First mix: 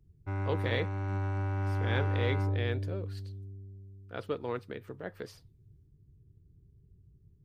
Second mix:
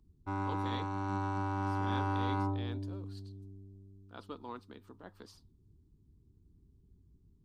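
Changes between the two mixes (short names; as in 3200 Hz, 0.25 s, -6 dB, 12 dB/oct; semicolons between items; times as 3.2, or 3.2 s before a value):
speech -10.0 dB; master: add ten-band EQ 125 Hz -11 dB, 250 Hz +9 dB, 500 Hz -8 dB, 1000 Hz +11 dB, 2000 Hz -9 dB, 4000 Hz +7 dB, 8000 Hz +5 dB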